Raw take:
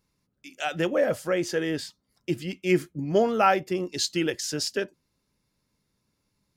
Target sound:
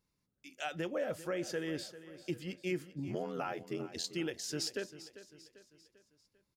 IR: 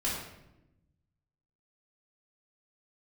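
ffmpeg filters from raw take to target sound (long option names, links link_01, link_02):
-filter_complex "[0:a]alimiter=limit=-18dB:level=0:latency=1:release=275,asettb=1/sr,asplit=3[link_01][link_02][link_03];[link_01]atrim=end=3.074[link_04];[link_02]atrim=start=3.07:end=4.04,asetpts=PTS-STARTPTS,afade=type=in:duration=0.004:curve=qsin,afade=type=out:start_time=0.966:duration=0.004:curve=qsin,aeval=exprs='val(0)*sin(2*PI*43*n/s)':channel_layout=same[link_05];[link_03]atrim=start=4.036[link_06];[link_04][link_05]acrossfade=duration=0.004:curve1=hsin:curve2=qsin[link_07];[link_07][link_06]acrossfade=duration=0.004:curve1=qsin:curve2=hsin,asplit=2[link_08][link_09];[link_09]aecho=0:1:395|790|1185|1580:0.178|0.0836|0.0393|0.0185[link_10];[link_08][link_10]amix=inputs=2:normalize=0,volume=-8dB"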